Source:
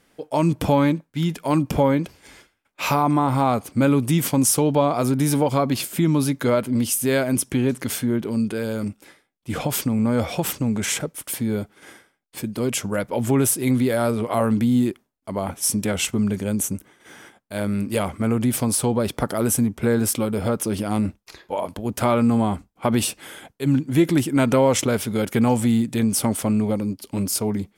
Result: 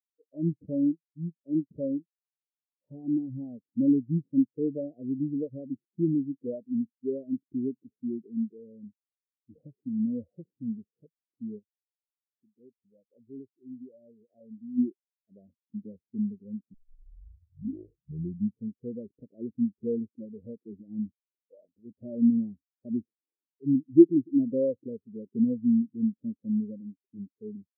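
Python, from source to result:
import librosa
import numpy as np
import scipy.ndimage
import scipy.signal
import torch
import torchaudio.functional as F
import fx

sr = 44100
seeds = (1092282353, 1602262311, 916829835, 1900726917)

y = fx.transient(x, sr, attack_db=-1, sustain_db=-10, at=(0.62, 3.04))
y = fx.ladder_lowpass(y, sr, hz=1200.0, resonance_pct=35, at=(11.58, 14.77), fade=0.02)
y = fx.edit(y, sr, fx.tape_start(start_s=16.74, length_s=2.03), tone=tone)
y = scipy.signal.sosfilt(scipy.signal.cheby2(4, 70, 2200.0, 'lowpass', fs=sr, output='sos'), y)
y = fx.tilt_eq(y, sr, slope=2.5)
y = fx.spectral_expand(y, sr, expansion=2.5)
y = F.gain(torch.from_numpy(y), 6.5).numpy()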